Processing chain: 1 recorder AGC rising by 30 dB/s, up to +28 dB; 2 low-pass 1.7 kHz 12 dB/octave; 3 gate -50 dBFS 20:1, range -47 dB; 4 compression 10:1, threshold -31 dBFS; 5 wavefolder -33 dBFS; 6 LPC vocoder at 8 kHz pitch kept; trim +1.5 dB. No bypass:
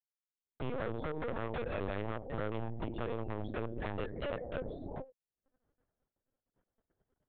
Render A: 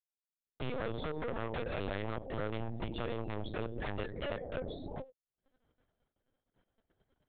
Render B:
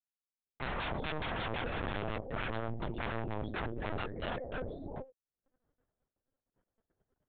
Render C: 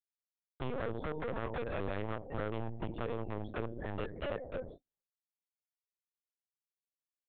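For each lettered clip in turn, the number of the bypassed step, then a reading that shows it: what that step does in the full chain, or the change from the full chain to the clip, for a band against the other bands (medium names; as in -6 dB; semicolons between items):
2, 4 kHz band +5.5 dB; 4, mean gain reduction 4.0 dB; 1, momentary loudness spread change -2 LU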